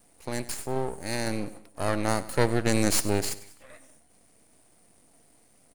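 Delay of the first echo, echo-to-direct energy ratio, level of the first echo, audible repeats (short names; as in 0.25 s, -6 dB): 97 ms, -16.0 dB, -17.0 dB, 3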